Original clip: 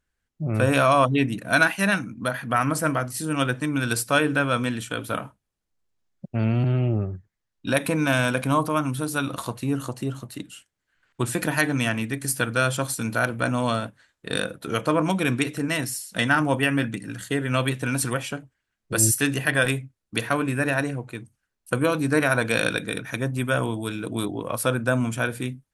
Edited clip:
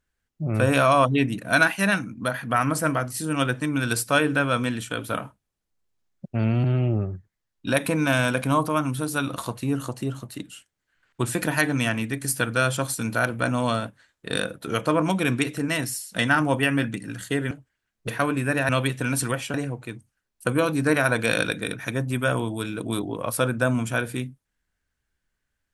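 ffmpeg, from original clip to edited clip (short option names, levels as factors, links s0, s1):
-filter_complex "[0:a]asplit=5[s0][s1][s2][s3][s4];[s0]atrim=end=17.512[s5];[s1]atrim=start=18.358:end=18.932[s6];[s2]atrim=start=20.188:end=20.802[s7];[s3]atrim=start=17.508:end=18.362[s8];[s4]atrim=start=20.798[s9];[s5][s6]acrossfade=d=0.004:c1=hsin:c2=hsin[s10];[s10][s7]acrossfade=d=0.004:c1=hsin:c2=hsin[s11];[s11][s8]acrossfade=d=0.004:c1=hsin:c2=hsin[s12];[s12][s9]acrossfade=d=0.004:c1=hsin:c2=hsin"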